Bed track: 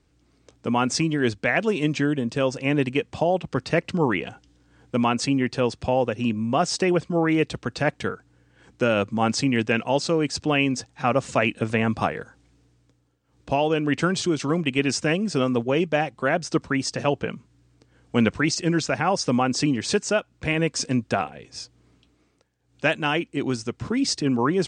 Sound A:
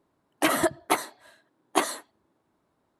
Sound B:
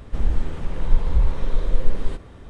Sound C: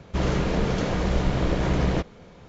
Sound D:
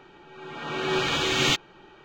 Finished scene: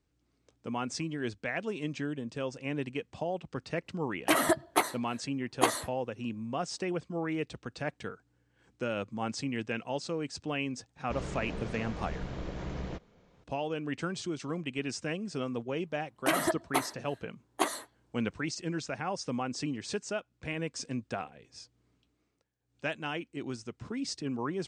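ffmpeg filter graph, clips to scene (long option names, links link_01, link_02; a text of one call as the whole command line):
ffmpeg -i bed.wav -i cue0.wav -i cue1.wav -i cue2.wav -filter_complex "[1:a]asplit=2[link_01][link_02];[0:a]volume=-12.5dB[link_03];[link_01]atrim=end=2.99,asetpts=PTS-STARTPTS,volume=-2.5dB,afade=type=in:duration=0.004:curve=hsin,afade=type=out:start_time=2.986:duration=0.004:curve=hsin,adelay=3860[link_04];[3:a]atrim=end=2.48,asetpts=PTS-STARTPTS,volume=-15dB,afade=type=in:duration=0.004:curve=hsin,afade=type=out:start_time=2.476:duration=0.004:curve=hsin,adelay=10960[link_05];[link_02]atrim=end=2.99,asetpts=PTS-STARTPTS,volume=-5.5dB,afade=type=in:duration=0.004:curve=hsin,afade=type=out:start_time=2.986:duration=0.004:curve=hsin,adelay=15840[link_06];[link_03][link_04][link_05][link_06]amix=inputs=4:normalize=0" out.wav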